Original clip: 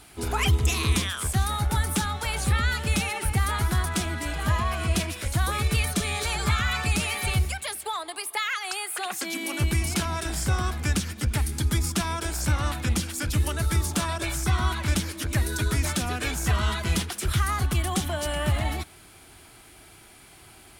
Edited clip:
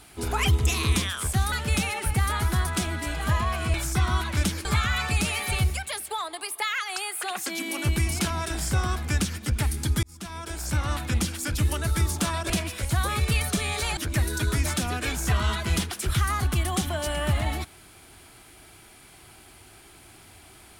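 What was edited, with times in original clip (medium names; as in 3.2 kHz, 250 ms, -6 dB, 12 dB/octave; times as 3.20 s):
1.52–2.71 s: delete
4.93–6.40 s: swap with 14.25–15.16 s
11.78–13.03 s: fade in equal-power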